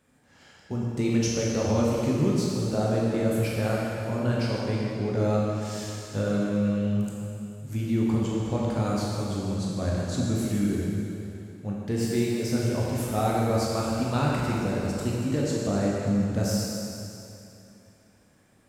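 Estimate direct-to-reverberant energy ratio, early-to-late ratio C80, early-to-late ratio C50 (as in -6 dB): -5.0 dB, -1.0 dB, -2.0 dB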